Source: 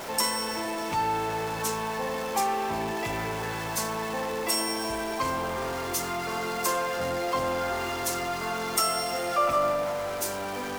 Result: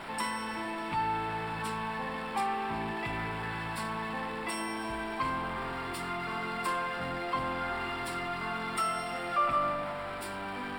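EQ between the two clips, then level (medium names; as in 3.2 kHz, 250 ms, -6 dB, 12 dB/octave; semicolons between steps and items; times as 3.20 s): boxcar filter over 7 samples; peaking EQ 82 Hz -6.5 dB 0.72 oct; peaking EQ 510 Hz -11 dB 1.1 oct; 0.0 dB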